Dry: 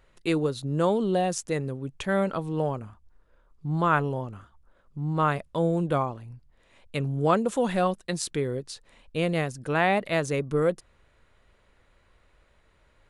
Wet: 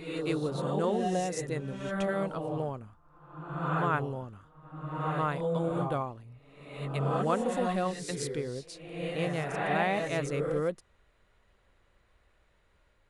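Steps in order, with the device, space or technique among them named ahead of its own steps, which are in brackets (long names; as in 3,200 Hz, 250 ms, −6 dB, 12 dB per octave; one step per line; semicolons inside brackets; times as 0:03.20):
reverse reverb (reversed playback; convolution reverb RT60 1.1 s, pre-delay 111 ms, DRR 1.5 dB; reversed playback)
level −7 dB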